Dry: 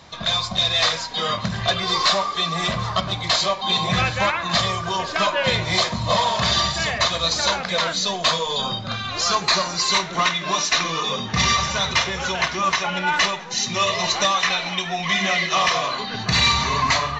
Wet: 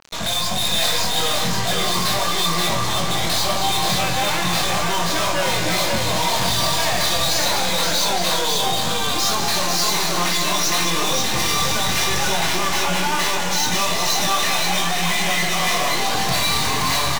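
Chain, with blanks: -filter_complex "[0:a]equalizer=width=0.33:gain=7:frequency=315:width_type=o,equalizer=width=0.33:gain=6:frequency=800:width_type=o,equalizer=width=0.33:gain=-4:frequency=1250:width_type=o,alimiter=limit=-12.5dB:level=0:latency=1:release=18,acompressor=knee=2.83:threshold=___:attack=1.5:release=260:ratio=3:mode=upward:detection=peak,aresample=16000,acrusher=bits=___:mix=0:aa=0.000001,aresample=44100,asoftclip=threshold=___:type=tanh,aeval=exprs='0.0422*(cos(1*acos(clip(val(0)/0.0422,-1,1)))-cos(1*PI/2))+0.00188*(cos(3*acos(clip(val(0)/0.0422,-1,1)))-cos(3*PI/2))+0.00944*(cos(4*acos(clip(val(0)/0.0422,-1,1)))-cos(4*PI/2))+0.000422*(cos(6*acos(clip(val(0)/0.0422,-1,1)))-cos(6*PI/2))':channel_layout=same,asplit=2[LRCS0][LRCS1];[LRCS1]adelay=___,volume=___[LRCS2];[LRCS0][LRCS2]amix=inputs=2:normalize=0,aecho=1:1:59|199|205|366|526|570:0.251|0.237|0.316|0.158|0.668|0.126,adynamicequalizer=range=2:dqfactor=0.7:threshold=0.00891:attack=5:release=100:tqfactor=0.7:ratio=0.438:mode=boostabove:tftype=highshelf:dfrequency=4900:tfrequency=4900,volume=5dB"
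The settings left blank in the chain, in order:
-40dB, 5, -27.5dB, 23, -5.5dB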